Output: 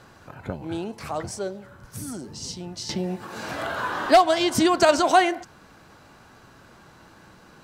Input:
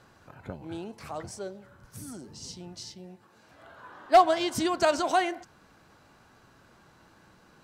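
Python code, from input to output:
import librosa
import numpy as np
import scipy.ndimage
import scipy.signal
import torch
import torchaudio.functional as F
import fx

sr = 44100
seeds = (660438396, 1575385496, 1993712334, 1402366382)

y = fx.band_squash(x, sr, depth_pct=70, at=(2.89, 4.89))
y = y * librosa.db_to_amplitude(7.5)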